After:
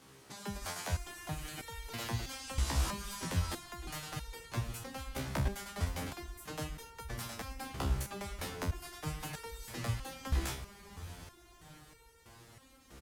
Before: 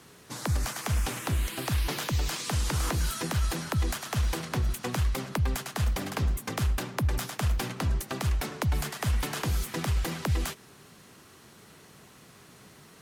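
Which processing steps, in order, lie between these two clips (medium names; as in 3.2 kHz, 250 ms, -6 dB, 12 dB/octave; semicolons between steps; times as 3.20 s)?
echo that smears into a reverb 693 ms, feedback 68%, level -13.5 dB; harmony voices -5 st -3 dB; resonator arpeggio 3.1 Hz 67–460 Hz; trim +1.5 dB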